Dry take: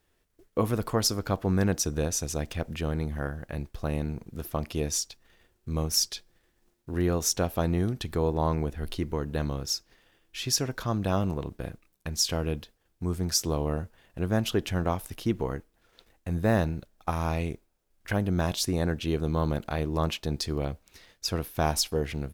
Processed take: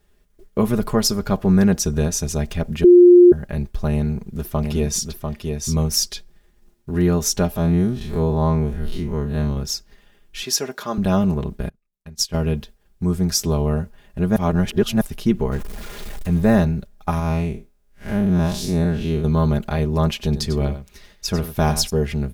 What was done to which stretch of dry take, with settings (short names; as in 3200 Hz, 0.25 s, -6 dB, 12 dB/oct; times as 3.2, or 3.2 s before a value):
2.84–3.32 bleep 354 Hz -12 dBFS
3.94–5.76 echo 0.695 s -5 dB
7.56–9.57 time blur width 90 ms
10.44–10.98 HPF 350 Hz
11.69–12.34 upward expander 2.5:1, over -40 dBFS
14.36–15.01 reverse
15.52–16.45 zero-crossing step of -37.5 dBFS
17.19–19.24 time blur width 0.128 s
20.1–21.9 echo 97 ms -12 dB
whole clip: low shelf 210 Hz +9.5 dB; comb 4.9 ms, depth 68%; gain +3.5 dB